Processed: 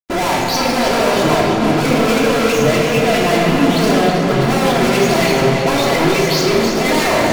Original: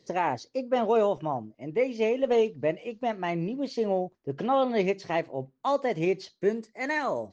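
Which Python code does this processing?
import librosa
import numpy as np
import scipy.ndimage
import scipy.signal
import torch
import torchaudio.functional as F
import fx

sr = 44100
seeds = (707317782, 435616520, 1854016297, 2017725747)

p1 = fx.spec_delay(x, sr, highs='late', ms=193)
p2 = fx.high_shelf(p1, sr, hz=4700.0, db=5.0)
p3 = fx.hum_notches(p2, sr, base_hz=50, count=9)
p4 = fx.fuzz(p3, sr, gain_db=52.0, gate_db=-53.0)
p5 = p4 + fx.echo_tape(p4, sr, ms=323, feedback_pct=77, wet_db=-4.5, lp_hz=5700.0, drive_db=6.0, wow_cents=21, dry=0)
p6 = fx.room_shoebox(p5, sr, seeds[0], volume_m3=2300.0, walls='mixed', distance_m=3.0)
y = F.gain(torch.from_numpy(p6), -6.5).numpy()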